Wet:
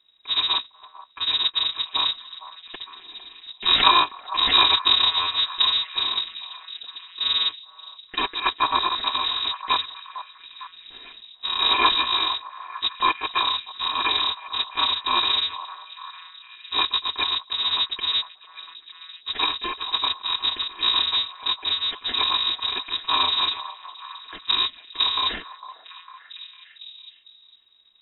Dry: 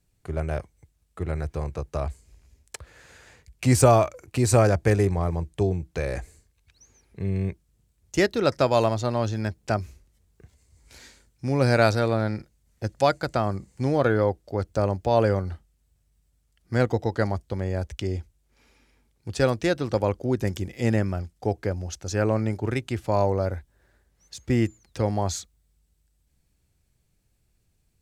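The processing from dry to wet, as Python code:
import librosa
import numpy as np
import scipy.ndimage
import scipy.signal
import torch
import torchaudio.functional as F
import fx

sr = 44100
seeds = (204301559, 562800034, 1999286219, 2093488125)

y = fx.bit_reversed(x, sr, seeds[0], block=256)
y = fx.air_absorb(y, sr, metres=77.0)
y = fx.freq_invert(y, sr, carrier_hz=3800)
y = fx.dynamic_eq(y, sr, hz=3000.0, q=2.0, threshold_db=-47.0, ratio=4.0, max_db=-7, at=(8.5, 9.06))
y = fx.echo_stepped(y, sr, ms=453, hz=860.0, octaves=0.7, feedback_pct=70, wet_db=-10.5)
y = F.gain(torch.from_numpy(y), 9.0).numpy()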